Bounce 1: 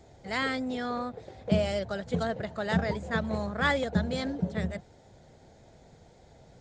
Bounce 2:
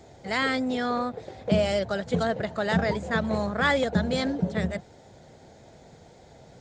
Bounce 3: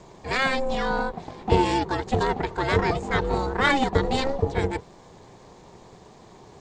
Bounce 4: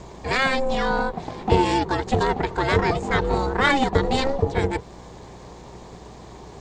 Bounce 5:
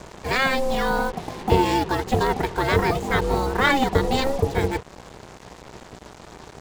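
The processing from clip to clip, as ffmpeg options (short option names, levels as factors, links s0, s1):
-filter_complex "[0:a]lowshelf=f=65:g=-10.5,asplit=2[s0][s1];[s1]alimiter=limit=0.0794:level=0:latency=1,volume=0.944[s2];[s0][s2]amix=inputs=2:normalize=0"
-af "aeval=exprs='0.299*(cos(1*acos(clip(val(0)/0.299,-1,1)))-cos(1*PI/2))+0.0211*(cos(4*acos(clip(val(0)/0.299,-1,1)))-cos(4*PI/2))':c=same,aeval=exprs='val(0)*sin(2*PI*270*n/s)':c=same,volume=1.88"
-filter_complex "[0:a]asplit=2[s0][s1];[s1]acompressor=threshold=0.0316:ratio=6,volume=1[s2];[s0][s2]amix=inputs=2:normalize=0,aeval=exprs='val(0)+0.00501*(sin(2*PI*60*n/s)+sin(2*PI*2*60*n/s)/2+sin(2*PI*3*60*n/s)/3+sin(2*PI*4*60*n/s)/4+sin(2*PI*5*60*n/s)/5)':c=same"
-af "acrusher=bits=5:mix=0:aa=0.5"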